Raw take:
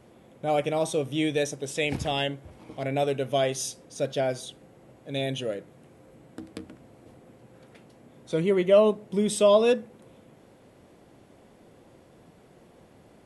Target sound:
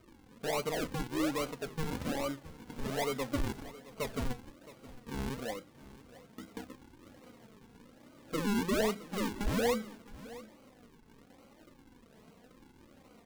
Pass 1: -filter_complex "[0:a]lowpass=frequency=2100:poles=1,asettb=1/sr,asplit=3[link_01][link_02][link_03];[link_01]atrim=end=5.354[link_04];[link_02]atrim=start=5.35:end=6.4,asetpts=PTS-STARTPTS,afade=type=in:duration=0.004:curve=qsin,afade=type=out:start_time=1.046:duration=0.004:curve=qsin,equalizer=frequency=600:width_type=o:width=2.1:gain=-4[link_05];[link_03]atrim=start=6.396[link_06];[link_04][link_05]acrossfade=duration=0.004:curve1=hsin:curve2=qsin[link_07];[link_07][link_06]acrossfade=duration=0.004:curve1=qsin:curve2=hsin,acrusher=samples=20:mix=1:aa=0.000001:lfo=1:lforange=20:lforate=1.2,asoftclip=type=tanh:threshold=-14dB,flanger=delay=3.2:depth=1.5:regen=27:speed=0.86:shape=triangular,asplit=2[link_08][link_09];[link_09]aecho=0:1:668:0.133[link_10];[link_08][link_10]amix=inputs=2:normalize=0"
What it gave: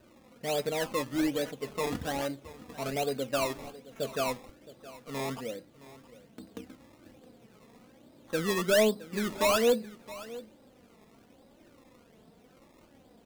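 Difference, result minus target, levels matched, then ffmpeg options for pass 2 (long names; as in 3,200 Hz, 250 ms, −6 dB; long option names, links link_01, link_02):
sample-and-hold swept by an LFO: distortion −19 dB; soft clipping: distortion −11 dB
-filter_complex "[0:a]lowpass=frequency=2100:poles=1,asettb=1/sr,asplit=3[link_01][link_02][link_03];[link_01]atrim=end=5.354[link_04];[link_02]atrim=start=5.35:end=6.4,asetpts=PTS-STARTPTS,afade=type=in:duration=0.004:curve=qsin,afade=type=out:start_time=1.046:duration=0.004:curve=qsin,equalizer=frequency=600:width_type=o:width=2.1:gain=-4[link_05];[link_03]atrim=start=6.396[link_06];[link_04][link_05]acrossfade=duration=0.004:curve1=hsin:curve2=qsin[link_07];[link_07][link_06]acrossfade=duration=0.004:curve1=qsin:curve2=hsin,acrusher=samples=49:mix=1:aa=0.000001:lfo=1:lforange=49:lforate=1.2,asoftclip=type=tanh:threshold=-24.5dB,flanger=delay=3.2:depth=1.5:regen=27:speed=0.86:shape=triangular,asplit=2[link_08][link_09];[link_09]aecho=0:1:668:0.133[link_10];[link_08][link_10]amix=inputs=2:normalize=0"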